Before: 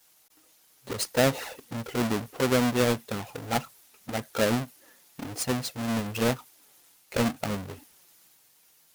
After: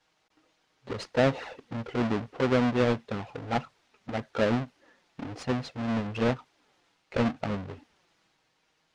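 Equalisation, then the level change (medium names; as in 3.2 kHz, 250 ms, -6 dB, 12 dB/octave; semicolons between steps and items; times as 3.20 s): distance through air 130 m; treble shelf 5.5 kHz -9 dB; 0.0 dB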